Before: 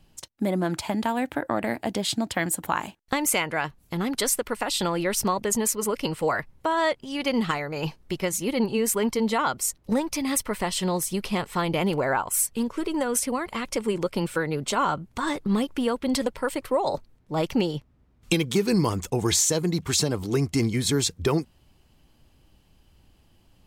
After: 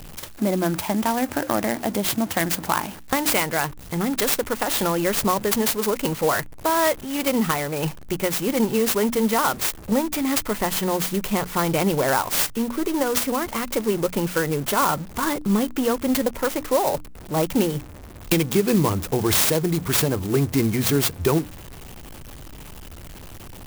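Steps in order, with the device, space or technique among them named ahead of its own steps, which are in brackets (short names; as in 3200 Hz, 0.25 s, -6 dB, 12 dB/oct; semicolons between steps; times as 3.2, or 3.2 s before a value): early CD player with a faulty converter (zero-crossing step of -36.5 dBFS; clock jitter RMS 0.059 ms); notches 60/120/180/240/300 Hz; gain +3 dB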